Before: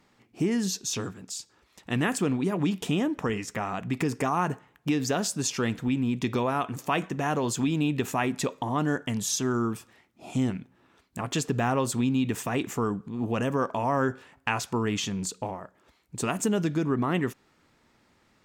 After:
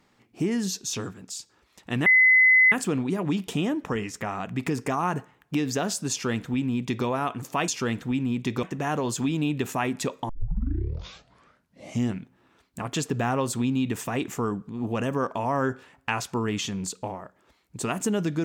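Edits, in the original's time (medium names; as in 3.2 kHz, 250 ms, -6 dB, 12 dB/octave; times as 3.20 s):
2.06 s: add tone 2.03 kHz -13.5 dBFS 0.66 s
5.45–6.40 s: copy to 7.02 s
8.68 s: tape start 1.85 s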